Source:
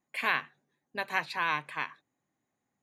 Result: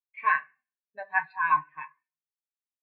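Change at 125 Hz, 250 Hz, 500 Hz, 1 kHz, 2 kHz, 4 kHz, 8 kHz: -6.0 dB, under -10 dB, -4.5 dB, +7.0 dB, +2.5 dB, under -20 dB, under -25 dB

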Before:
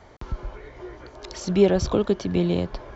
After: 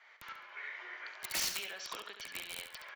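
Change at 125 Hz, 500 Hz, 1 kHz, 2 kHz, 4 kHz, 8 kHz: -38.0 dB, -31.5 dB, -11.5 dB, 0.0 dB, -2.0 dB, no reading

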